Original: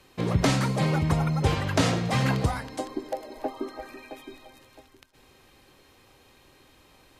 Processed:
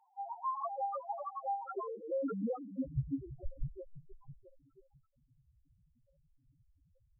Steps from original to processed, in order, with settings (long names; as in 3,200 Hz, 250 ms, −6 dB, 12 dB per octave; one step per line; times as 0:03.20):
0:01.30–0:02.15: dynamic equaliser 760 Hz, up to −6 dB, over −40 dBFS, Q 1.7
high-pass filter sweep 1,100 Hz → 130 Hz, 0:01.31–0:04.58
single-sideband voice off tune −250 Hz 190–2,100 Hz
spectral peaks only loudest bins 1
level +2 dB